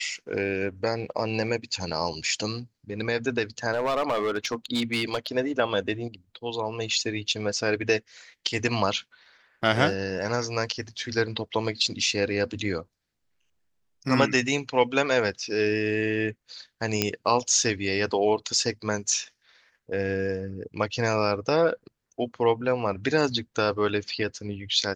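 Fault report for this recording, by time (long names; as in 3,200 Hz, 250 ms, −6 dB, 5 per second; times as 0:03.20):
0:03.73–0:05.27: clipping −20.5 dBFS
0:17.02: click −6 dBFS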